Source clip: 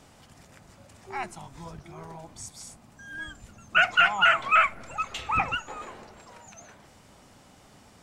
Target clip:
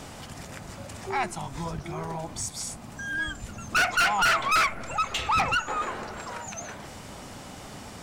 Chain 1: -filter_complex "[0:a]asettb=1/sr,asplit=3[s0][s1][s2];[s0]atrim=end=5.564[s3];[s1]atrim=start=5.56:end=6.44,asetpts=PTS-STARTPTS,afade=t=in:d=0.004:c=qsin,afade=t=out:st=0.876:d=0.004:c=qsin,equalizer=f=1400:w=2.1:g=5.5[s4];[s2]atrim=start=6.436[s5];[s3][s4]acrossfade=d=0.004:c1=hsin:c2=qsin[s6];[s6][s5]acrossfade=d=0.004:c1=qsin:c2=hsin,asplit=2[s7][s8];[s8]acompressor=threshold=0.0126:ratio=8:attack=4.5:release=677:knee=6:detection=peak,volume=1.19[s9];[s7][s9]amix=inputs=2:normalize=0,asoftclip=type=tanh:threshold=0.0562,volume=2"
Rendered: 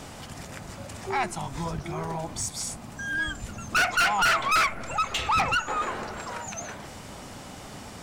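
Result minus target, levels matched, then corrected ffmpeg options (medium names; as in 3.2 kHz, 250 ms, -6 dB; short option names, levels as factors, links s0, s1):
compression: peak gain reduction -5.5 dB
-filter_complex "[0:a]asettb=1/sr,asplit=3[s0][s1][s2];[s0]atrim=end=5.564[s3];[s1]atrim=start=5.56:end=6.44,asetpts=PTS-STARTPTS,afade=t=in:d=0.004:c=qsin,afade=t=out:st=0.876:d=0.004:c=qsin,equalizer=f=1400:w=2.1:g=5.5[s4];[s2]atrim=start=6.436[s5];[s3][s4]acrossfade=d=0.004:c1=hsin:c2=qsin[s6];[s6][s5]acrossfade=d=0.004:c1=qsin:c2=hsin,asplit=2[s7][s8];[s8]acompressor=threshold=0.00596:ratio=8:attack=4.5:release=677:knee=6:detection=peak,volume=1.19[s9];[s7][s9]amix=inputs=2:normalize=0,asoftclip=type=tanh:threshold=0.0562,volume=2"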